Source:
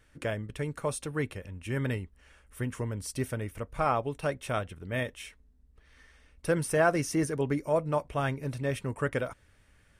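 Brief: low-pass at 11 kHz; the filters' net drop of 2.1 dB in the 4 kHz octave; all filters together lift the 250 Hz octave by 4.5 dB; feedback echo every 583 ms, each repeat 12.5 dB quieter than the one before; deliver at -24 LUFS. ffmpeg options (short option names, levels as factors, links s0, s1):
-af "lowpass=11000,equalizer=f=250:t=o:g=6,equalizer=f=4000:t=o:g=-3,aecho=1:1:583|1166|1749:0.237|0.0569|0.0137,volume=2"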